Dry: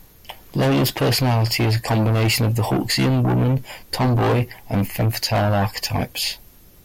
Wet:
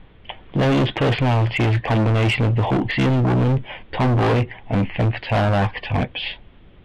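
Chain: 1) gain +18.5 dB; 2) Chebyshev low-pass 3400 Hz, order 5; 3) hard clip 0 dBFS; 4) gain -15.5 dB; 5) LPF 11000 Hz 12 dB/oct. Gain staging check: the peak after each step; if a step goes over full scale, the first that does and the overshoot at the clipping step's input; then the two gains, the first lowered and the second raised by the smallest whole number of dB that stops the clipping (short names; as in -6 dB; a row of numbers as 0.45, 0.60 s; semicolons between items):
+7.5, +6.0, 0.0, -15.5, -15.0 dBFS; step 1, 6.0 dB; step 1 +12.5 dB, step 4 -9.5 dB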